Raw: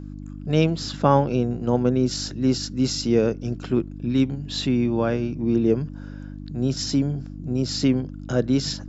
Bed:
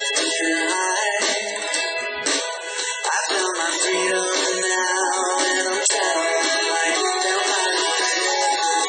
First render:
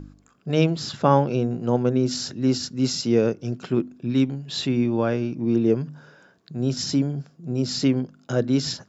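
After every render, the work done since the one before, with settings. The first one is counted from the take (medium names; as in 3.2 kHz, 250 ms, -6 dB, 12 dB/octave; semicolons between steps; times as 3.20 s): de-hum 50 Hz, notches 6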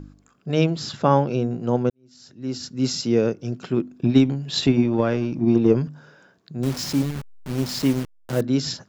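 1.90–2.82 s: fade in quadratic; 3.97–5.88 s: transient shaper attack +10 dB, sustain +6 dB; 6.63–8.41 s: send-on-delta sampling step -28.5 dBFS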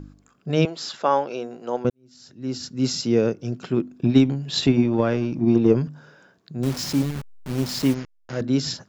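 0.65–1.85 s: high-pass 480 Hz; 7.94–8.41 s: rippled Chebyshev low-pass 6.9 kHz, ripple 6 dB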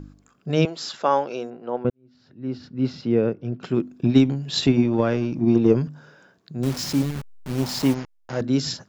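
1.50–3.63 s: distance through air 350 m; 7.60–8.41 s: peaking EQ 840 Hz +7 dB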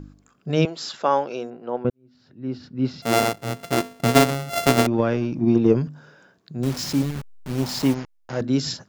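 3.02–4.87 s: sorted samples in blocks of 64 samples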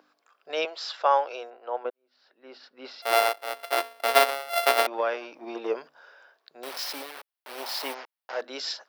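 high-pass 560 Hz 24 dB/octave; peaking EQ 6.9 kHz -14.5 dB 0.39 oct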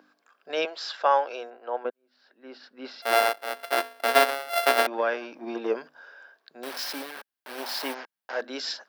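small resonant body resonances 220/1600 Hz, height 9 dB, ringing for 25 ms; saturation -3 dBFS, distortion -26 dB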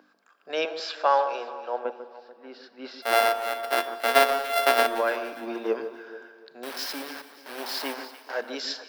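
echo whose repeats swap between lows and highs 145 ms, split 1.6 kHz, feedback 60%, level -10 dB; Schroeder reverb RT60 1.8 s, combs from 29 ms, DRR 14.5 dB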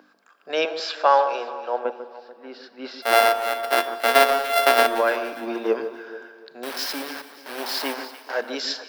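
trim +4.5 dB; peak limiter -2 dBFS, peak gain reduction 2.5 dB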